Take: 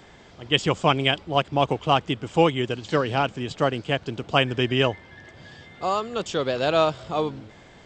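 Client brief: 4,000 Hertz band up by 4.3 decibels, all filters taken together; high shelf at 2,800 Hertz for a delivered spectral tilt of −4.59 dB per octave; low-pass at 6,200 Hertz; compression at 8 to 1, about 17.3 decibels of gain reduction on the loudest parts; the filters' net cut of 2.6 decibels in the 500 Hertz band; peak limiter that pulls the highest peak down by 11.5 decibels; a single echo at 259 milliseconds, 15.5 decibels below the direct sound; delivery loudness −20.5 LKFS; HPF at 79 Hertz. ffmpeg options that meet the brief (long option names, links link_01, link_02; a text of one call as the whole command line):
ffmpeg -i in.wav -af "highpass=79,lowpass=6200,equalizer=frequency=500:width_type=o:gain=-3.5,highshelf=frequency=2800:gain=4,equalizer=frequency=4000:width_type=o:gain=3.5,acompressor=threshold=-29dB:ratio=8,alimiter=level_in=1.5dB:limit=-24dB:level=0:latency=1,volume=-1.5dB,aecho=1:1:259:0.168,volume=18dB" out.wav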